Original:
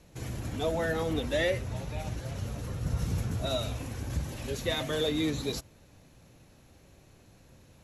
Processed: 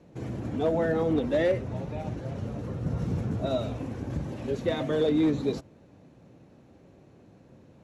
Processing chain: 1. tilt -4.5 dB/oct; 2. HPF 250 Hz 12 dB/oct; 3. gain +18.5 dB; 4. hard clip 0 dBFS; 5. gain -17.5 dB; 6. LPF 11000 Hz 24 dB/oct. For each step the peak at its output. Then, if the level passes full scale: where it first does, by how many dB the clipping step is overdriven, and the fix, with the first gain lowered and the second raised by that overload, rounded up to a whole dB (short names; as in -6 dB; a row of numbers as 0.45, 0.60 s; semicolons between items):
-3.0, -15.0, +3.5, 0.0, -17.5, -17.5 dBFS; step 3, 3.5 dB; step 3 +14.5 dB, step 5 -13.5 dB